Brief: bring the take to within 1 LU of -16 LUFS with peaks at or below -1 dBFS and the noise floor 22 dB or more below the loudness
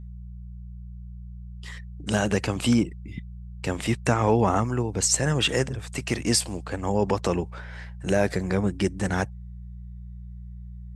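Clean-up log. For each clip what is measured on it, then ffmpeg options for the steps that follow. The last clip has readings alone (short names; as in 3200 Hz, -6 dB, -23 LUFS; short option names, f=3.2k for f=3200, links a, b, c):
hum 60 Hz; harmonics up to 180 Hz; hum level -36 dBFS; loudness -25.0 LUFS; peak -7.0 dBFS; loudness target -16.0 LUFS
-> -af "bandreject=f=60:t=h:w=4,bandreject=f=120:t=h:w=4,bandreject=f=180:t=h:w=4"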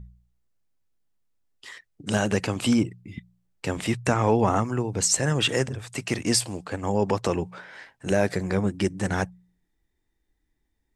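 hum none; loudness -25.0 LUFS; peak -7.5 dBFS; loudness target -16.0 LUFS
-> -af "volume=9dB,alimiter=limit=-1dB:level=0:latency=1"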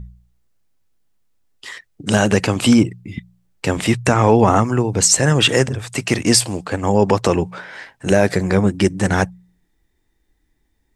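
loudness -16.5 LUFS; peak -1.0 dBFS; noise floor -66 dBFS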